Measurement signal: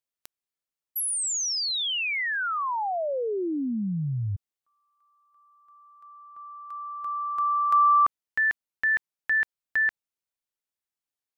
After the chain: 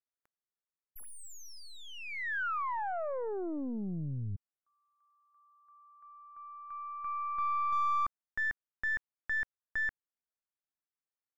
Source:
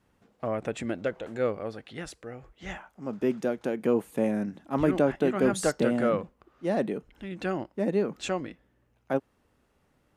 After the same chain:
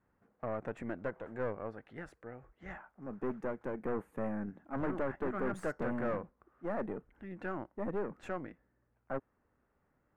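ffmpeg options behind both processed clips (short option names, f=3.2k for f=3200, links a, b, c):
-af "aeval=exprs='(tanh(20*val(0)+0.6)-tanh(0.6))/20':c=same,highshelf=f=2.5k:t=q:w=1.5:g=-14,volume=-5dB"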